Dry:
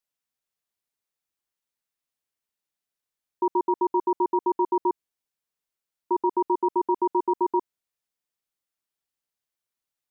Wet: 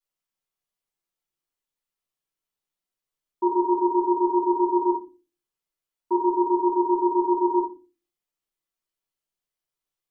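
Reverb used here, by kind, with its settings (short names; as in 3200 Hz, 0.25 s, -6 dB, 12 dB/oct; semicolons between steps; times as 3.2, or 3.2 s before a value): shoebox room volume 120 m³, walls furnished, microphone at 3 m; gain -8 dB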